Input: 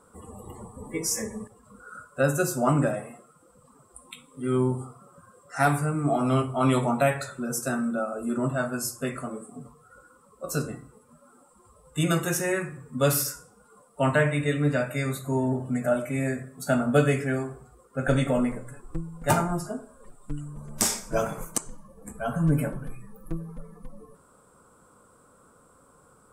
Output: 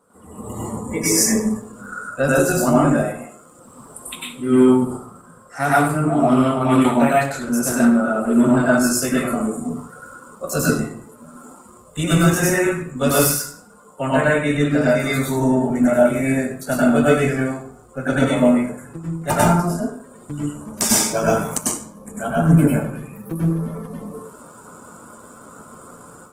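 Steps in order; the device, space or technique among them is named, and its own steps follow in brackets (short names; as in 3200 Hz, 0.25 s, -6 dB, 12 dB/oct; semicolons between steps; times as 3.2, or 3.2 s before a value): 2.91–4.25 high shelf 2400 Hz +2 dB; far-field microphone of a smart speaker (reverb RT60 0.45 s, pre-delay 92 ms, DRR -5 dB; HPF 110 Hz 12 dB/oct; AGC gain up to 12.5 dB; gain -2.5 dB; Opus 16 kbps 48000 Hz)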